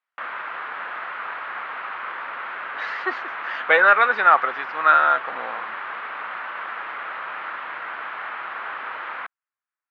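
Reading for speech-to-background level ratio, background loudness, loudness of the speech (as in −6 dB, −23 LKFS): 13.0 dB, −31.0 LKFS, −18.0 LKFS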